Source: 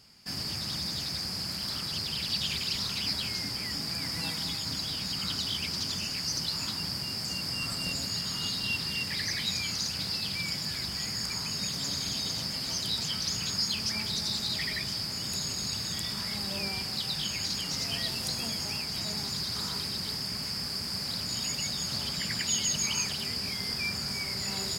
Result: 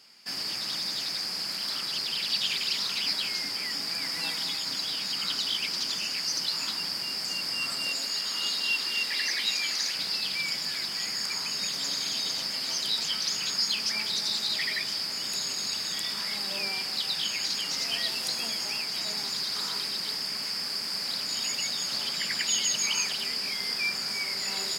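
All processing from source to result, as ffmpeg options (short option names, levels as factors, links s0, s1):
-filter_complex "[0:a]asettb=1/sr,asplit=3[s0][s1][s2];[s0]atrim=end=7.854[s3];[s1]atrim=start=7.85:end=9.95,asetpts=PTS-STARTPTS,afade=t=in:d=0.004:c=qsin,afade=t=out:st=2.096:d=0.004:c=qsin,highpass=240,aecho=1:1:515:0.355,atrim=end_sample=92610[s4];[s2]atrim=start=9.946[s5];[s3][s4]acrossfade=d=0.004:c1=hsin:c2=qsin[s6];[s6][s5]acrossfade=d=0.004:c1=qsin:c2=hsin,highpass=300,equalizer=f=2500:w=0.58:g=4.5"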